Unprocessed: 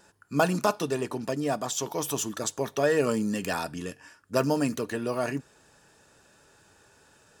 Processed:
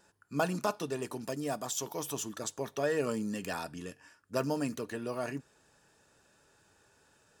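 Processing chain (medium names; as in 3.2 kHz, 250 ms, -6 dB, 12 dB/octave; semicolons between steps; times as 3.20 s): 1.01–2.01 s: treble shelf 5.7 kHz -> 11 kHz +10 dB; trim -7 dB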